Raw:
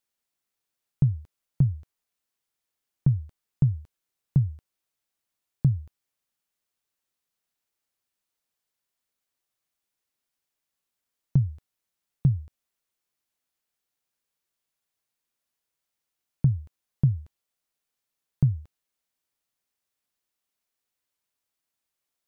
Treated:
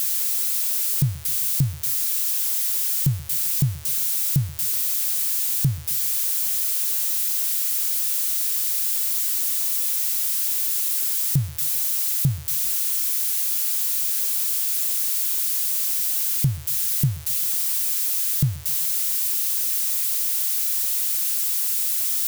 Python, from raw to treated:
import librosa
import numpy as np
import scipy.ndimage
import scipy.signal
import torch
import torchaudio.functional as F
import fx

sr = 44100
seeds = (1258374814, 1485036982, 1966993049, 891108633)

p1 = x + 0.5 * 10.0 ** (-19.0 / 20.0) * np.diff(np.sign(x), prepend=np.sign(x[:1]))
y = p1 + fx.echo_feedback(p1, sr, ms=130, feedback_pct=45, wet_db=-21.5, dry=0)